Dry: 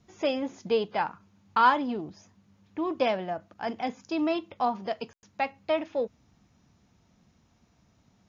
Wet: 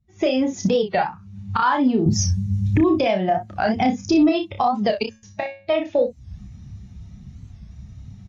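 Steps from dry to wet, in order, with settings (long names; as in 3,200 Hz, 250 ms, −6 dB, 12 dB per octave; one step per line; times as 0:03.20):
spectral dynamics exaggerated over time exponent 1.5
camcorder AGC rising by 75 dB per second
0:02.06–0:02.99: bass and treble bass +13 dB, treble +4 dB
0:05.03–0:05.70: tuned comb filter 110 Hz, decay 0.38 s, harmonics all, mix 80%
low-pass that shuts in the quiet parts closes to 2,900 Hz, open at −19 dBFS
0:03.76–0:04.29: low-shelf EQ 290 Hz +11 dB
ambience of single reflections 31 ms −6 dB, 60 ms −11.5 dB
boost into a limiter +13 dB
wow of a warped record 45 rpm, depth 160 cents
level −8.5 dB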